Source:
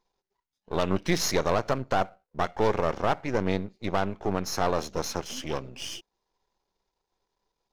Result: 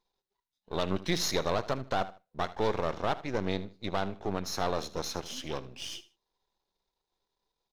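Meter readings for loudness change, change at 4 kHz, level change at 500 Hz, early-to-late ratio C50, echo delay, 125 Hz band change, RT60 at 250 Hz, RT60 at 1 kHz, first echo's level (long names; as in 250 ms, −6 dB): −4.5 dB, −1.0 dB, −5.0 dB, no reverb audible, 77 ms, −5.0 dB, no reverb audible, no reverb audible, −17.0 dB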